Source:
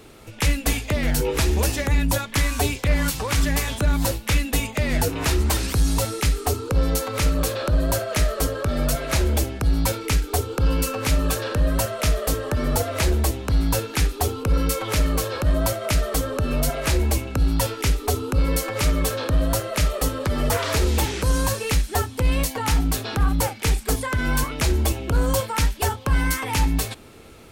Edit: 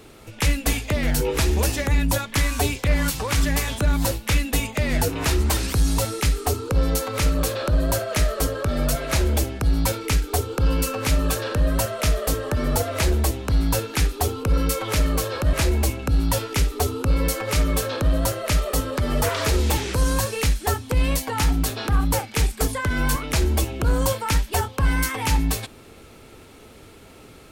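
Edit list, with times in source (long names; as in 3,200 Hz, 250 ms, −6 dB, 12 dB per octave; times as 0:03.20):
0:15.53–0:16.81: remove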